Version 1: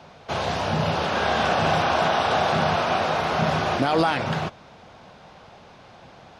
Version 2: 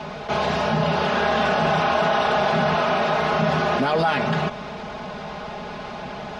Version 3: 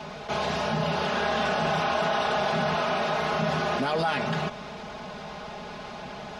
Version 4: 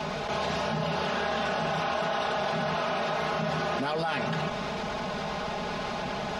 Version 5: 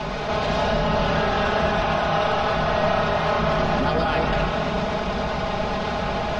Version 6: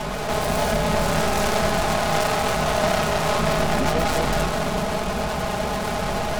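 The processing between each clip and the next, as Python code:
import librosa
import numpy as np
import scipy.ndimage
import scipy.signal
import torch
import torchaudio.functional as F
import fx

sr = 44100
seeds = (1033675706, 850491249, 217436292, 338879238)

y1 = fx.lowpass(x, sr, hz=3800.0, slope=6)
y1 = y1 + 0.76 * np.pad(y1, (int(4.8 * sr / 1000.0), 0))[:len(y1)]
y1 = fx.env_flatten(y1, sr, amount_pct=50)
y1 = F.gain(torch.from_numpy(y1), -2.0).numpy()
y2 = fx.high_shelf(y1, sr, hz=5300.0, db=9.0)
y2 = F.gain(torch.from_numpy(y2), -6.0).numpy()
y3 = fx.env_flatten(y2, sr, amount_pct=70)
y3 = F.gain(torch.from_numpy(y3), -4.5).numpy()
y4 = fx.octave_divider(y3, sr, octaves=2, level_db=-1.0)
y4 = fx.air_absorb(y4, sr, metres=58.0)
y4 = fx.rev_freeverb(y4, sr, rt60_s=2.2, hf_ratio=0.55, predelay_ms=90, drr_db=1.0)
y4 = F.gain(torch.from_numpy(y4), 4.5).numpy()
y5 = fx.tracing_dist(y4, sr, depth_ms=0.42)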